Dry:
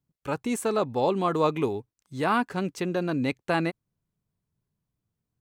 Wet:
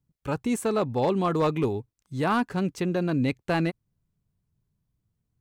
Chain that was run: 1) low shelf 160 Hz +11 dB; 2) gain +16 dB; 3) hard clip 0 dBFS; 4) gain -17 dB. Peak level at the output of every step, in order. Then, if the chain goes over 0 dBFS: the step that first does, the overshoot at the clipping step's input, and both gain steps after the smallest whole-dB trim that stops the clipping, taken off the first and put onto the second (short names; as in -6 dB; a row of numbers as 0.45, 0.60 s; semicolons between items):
-11.0, +5.0, 0.0, -17.0 dBFS; step 2, 5.0 dB; step 2 +11 dB, step 4 -12 dB